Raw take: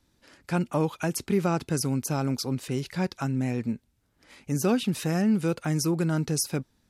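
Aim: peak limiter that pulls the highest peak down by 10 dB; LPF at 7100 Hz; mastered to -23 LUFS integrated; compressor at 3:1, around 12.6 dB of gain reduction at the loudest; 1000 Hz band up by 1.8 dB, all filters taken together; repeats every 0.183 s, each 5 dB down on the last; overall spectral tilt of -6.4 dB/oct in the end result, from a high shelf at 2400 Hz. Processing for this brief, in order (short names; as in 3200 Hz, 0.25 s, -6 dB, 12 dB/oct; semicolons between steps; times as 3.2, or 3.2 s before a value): LPF 7100 Hz; bell 1000 Hz +3.5 dB; high shelf 2400 Hz -5.5 dB; compressor 3:1, threshold -37 dBFS; limiter -31 dBFS; feedback echo 0.183 s, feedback 56%, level -5 dB; gain +16.5 dB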